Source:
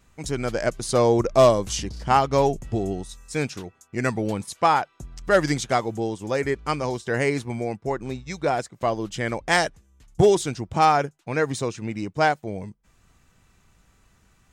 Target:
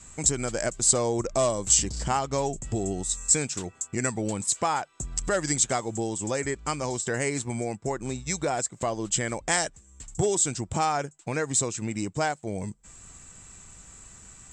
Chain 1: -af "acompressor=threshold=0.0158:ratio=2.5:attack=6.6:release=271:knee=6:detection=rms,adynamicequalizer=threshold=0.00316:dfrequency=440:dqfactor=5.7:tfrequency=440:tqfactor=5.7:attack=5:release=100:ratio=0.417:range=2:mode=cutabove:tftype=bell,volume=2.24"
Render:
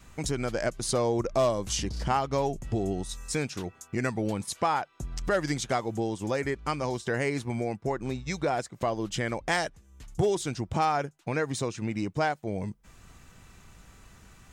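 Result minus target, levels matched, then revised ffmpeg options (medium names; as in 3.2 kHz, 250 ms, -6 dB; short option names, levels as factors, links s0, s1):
8 kHz band -10.5 dB
-af "acompressor=threshold=0.0158:ratio=2.5:attack=6.6:release=271:knee=6:detection=rms,lowpass=f=7700:t=q:w=13,adynamicequalizer=threshold=0.00316:dfrequency=440:dqfactor=5.7:tfrequency=440:tqfactor=5.7:attack=5:release=100:ratio=0.417:range=2:mode=cutabove:tftype=bell,volume=2.24"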